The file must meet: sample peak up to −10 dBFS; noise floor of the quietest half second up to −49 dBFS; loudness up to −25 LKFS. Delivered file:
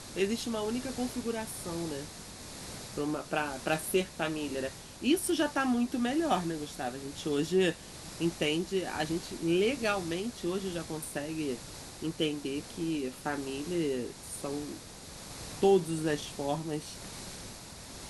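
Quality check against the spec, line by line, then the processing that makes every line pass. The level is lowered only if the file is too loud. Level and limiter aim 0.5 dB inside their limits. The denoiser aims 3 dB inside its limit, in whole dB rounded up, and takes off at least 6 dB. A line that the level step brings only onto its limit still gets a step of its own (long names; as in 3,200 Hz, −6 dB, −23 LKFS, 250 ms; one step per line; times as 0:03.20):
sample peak −14.5 dBFS: in spec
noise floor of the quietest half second −47 dBFS: out of spec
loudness −33.0 LKFS: in spec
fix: broadband denoise 6 dB, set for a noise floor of −47 dBFS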